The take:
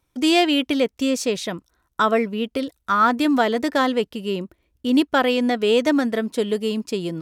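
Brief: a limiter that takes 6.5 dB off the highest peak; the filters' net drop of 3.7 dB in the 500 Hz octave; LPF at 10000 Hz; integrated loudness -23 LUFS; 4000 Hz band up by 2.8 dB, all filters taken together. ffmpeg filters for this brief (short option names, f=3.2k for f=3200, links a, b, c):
-af "lowpass=10k,equalizer=f=500:t=o:g=-4.5,equalizer=f=4k:t=o:g=4,volume=0.5dB,alimiter=limit=-12dB:level=0:latency=1"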